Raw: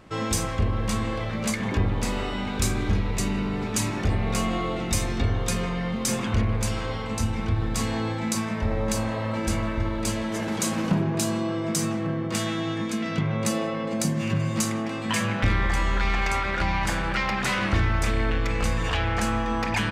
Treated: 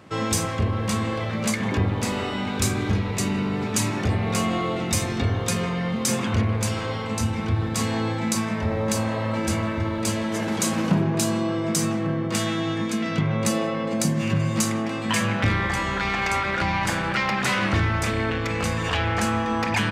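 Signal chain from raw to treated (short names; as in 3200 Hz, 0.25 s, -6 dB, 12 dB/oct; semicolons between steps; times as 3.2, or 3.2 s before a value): HPF 75 Hz 24 dB/oct; gain +2.5 dB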